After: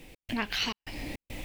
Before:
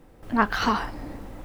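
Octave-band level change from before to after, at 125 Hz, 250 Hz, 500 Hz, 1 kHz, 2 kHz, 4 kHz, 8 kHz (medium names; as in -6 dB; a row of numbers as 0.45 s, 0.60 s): -6.5 dB, -9.0 dB, -10.5 dB, -15.5 dB, -7.0 dB, +2.5 dB, +0.5 dB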